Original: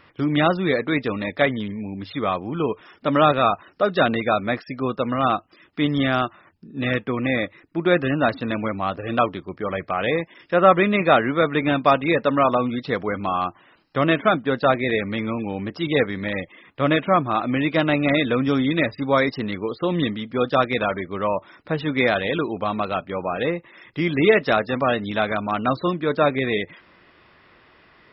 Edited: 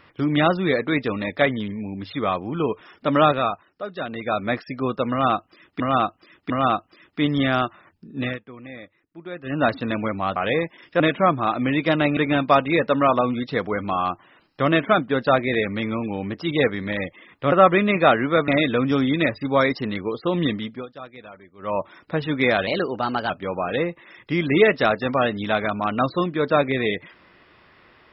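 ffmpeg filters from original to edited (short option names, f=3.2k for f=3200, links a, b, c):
-filter_complex "[0:a]asplit=16[a][b][c][d][e][f][g][h][i][j][k][l][m][n][o][p];[a]atrim=end=3.66,asetpts=PTS-STARTPTS,afade=t=out:st=3.23:d=0.43:silence=0.266073[q];[b]atrim=start=3.66:end=4.09,asetpts=PTS-STARTPTS,volume=-11.5dB[r];[c]atrim=start=4.09:end=5.802,asetpts=PTS-STARTPTS,afade=t=in:d=0.43:silence=0.266073[s];[d]atrim=start=5.098:end=5.802[t];[e]atrim=start=5.098:end=6.99,asetpts=PTS-STARTPTS,afade=t=out:st=1.712:d=0.18:silence=0.149624[u];[f]atrim=start=6.99:end=8.03,asetpts=PTS-STARTPTS,volume=-16.5dB[v];[g]atrim=start=8.03:end=8.962,asetpts=PTS-STARTPTS,afade=t=in:d=0.18:silence=0.149624[w];[h]atrim=start=9.928:end=10.572[x];[i]atrim=start=16.878:end=18.052[y];[j]atrim=start=11.528:end=16.882[z];[k]atrim=start=10.568:end=11.532[aa];[l]atrim=start=18.048:end=20.43,asetpts=PTS-STARTPTS,afade=t=out:st=2.182:d=0.2:silence=0.105925[ab];[m]atrim=start=20.43:end=21.15,asetpts=PTS-STARTPTS,volume=-19.5dB[ac];[n]atrim=start=21.15:end=22.244,asetpts=PTS-STARTPTS,afade=t=in:d=0.2:silence=0.105925[ad];[o]atrim=start=22.24:end=22.97,asetpts=PTS-STARTPTS,asetrate=51156,aresample=44100[ae];[p]atrim=start=22.966[af];[q][r][s]concat=n=3:v=0:a=1[ag];[ag][t]acrossfade=d=0.004:c1=hsin:c2=hsin[ah];[u][v][w]concat=n=3:v=0:a=1[ai];[ah][ai]acrossfade=d=0.004:c1=hsin:c2=hsin[aj];[aj][x]acrossfade=d=0.004:c1=hsin:c2=hsin[ak];[ak][y]acrossfade=d=0.004:c1=hsin:c2=hsin[al];[al][z]acrossfade=d=0.004:c1=hsin:c2=hsin[am];[am][aa]acrossfade=d=0.004:c1=hsin:c2=hsin[an];[ab][ac][ad]concat=n=3:v=0:a=1[ao];[an][ao]acrossfade=d=0.004:c1=hsin:c2=hsin[ap];[ap][ae]acrossfade=d=0.004:c1=hsin:c2=hsin[aq];[aq][af]acrossfade=d=0.004:c1=hsin:c2=hsin"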